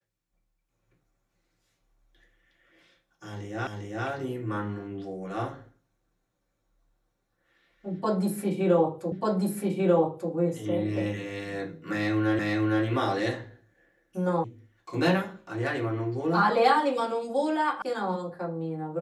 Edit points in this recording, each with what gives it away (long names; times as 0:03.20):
0:03.67: the same again, the last 0.4 s
0:09.12: the same again, the last 1.19 s
0:12.39: the same again, the last 0.46 s
0:14.44: cut off before it has died away
0:17.82: cut off before it has died away